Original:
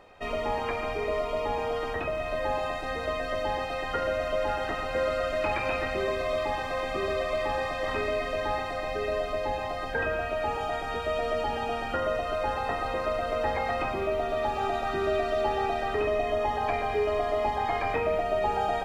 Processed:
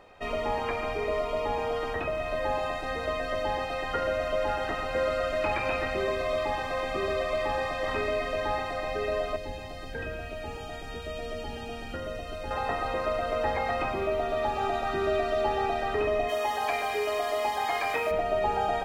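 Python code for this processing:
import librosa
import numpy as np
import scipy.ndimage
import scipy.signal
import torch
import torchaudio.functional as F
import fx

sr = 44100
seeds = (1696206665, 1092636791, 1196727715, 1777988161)

y = fx.peak_eq(x, sr, hz=1000.0, db=-13.0, octaves=2.1, at=(9.36, 12.51))
y = fx.riaa(y, sr, side='recording', at=(16.28, 18.1), fade=0.02)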